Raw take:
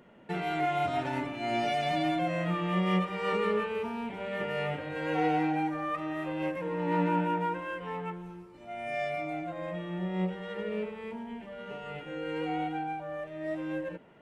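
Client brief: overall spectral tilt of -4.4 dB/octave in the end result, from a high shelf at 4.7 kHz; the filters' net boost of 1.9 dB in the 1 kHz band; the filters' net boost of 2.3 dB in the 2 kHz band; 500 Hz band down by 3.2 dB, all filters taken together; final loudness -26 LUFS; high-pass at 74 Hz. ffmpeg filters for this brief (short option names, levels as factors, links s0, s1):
-af "highpass=74,equalizer=f=500:t=o:g=-6,equalizer=f=1000:t=o:g=5,equalizer=f=2000:t=o:g=3,highshelf=f=4700:g=-7.5,volume=2"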